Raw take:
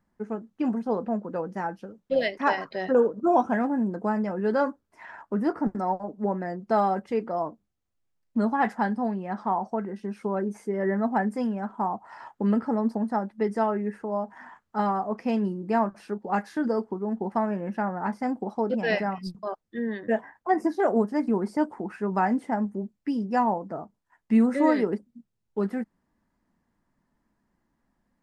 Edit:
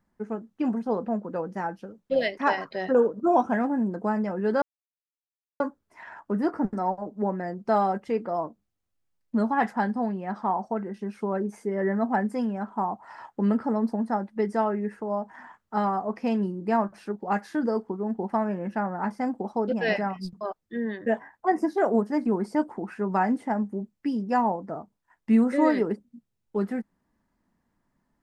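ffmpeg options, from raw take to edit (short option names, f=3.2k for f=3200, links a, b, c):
-filter_complex "[0:a]asplit=2[a][b];[a]atrim=end=4.62,asetpts=PTS-STARTPTS,afade=t=out:st=4.616:d=0.004:c=hsin,apad=pad_dur=0.98[c];[b]atrim=start=4.62,asetpts=PTS-STARTPTS,afade=t=in:d=0.004:c=hsin[d];[c][d]concat=n=2:v=0:a=1"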